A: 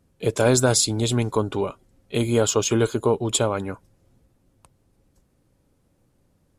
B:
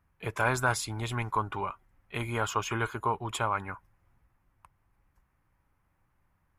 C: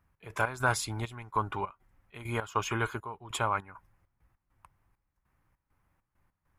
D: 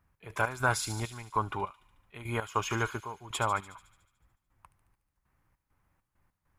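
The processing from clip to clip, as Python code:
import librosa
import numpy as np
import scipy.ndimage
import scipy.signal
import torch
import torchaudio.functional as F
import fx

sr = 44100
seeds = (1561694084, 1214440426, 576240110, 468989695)

y1 = fx.graphic_eq_10(x, sr, hz=(125, 250, 500, 1000, 2000, 4000, 8000), db=(-4, -9, -12, 8, 7, -10, -12))
y1 = y1 * librosa.db_to_amplitude(-4.0)
y2 = fx.step_gate(y1, sr, bpm=100, pattern='x.x.xxx..xx.x', floor_db=-12.0, edge_ms=4.5)
y3 = fx.echo_wet_highpass(y2, sr, ms=73, feedback_pct=65, hz=3900.0, wet_db=-7.0)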